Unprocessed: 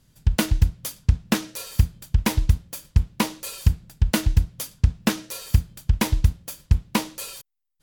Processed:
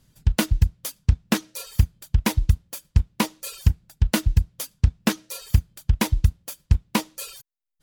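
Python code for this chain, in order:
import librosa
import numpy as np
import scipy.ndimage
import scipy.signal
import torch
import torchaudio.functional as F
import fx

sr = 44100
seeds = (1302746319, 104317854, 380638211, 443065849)

y = fx.dereverb_blind(x, sr, rt60_s=0.66)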